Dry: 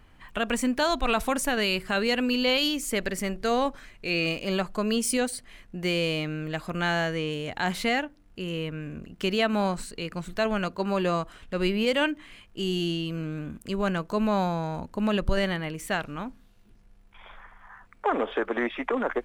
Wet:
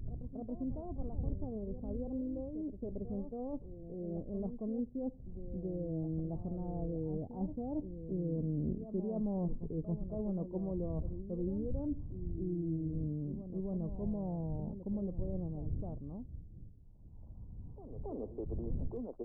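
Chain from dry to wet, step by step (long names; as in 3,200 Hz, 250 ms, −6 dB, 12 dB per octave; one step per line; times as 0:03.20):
source passing by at 0:08.76, 12 m/s, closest 7.4 metres
wind on the microphone 87 Hz −52 dBFS
reversed playback
downward compressor 6 to 1, threshold −45 dBFS, peak gain reduction 21.5 dB
reversed playback
Gaussian smoothing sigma 16 samples
backwards echo 276 ms −10 dB
level +14 dB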